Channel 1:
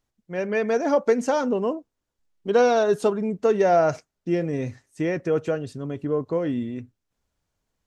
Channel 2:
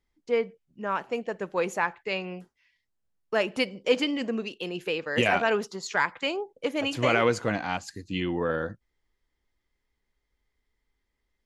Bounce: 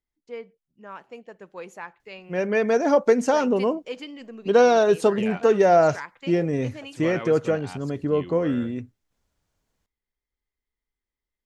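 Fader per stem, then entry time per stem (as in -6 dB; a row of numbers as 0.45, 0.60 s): +2.0, -11.0 dB; 2.00, 0.00 s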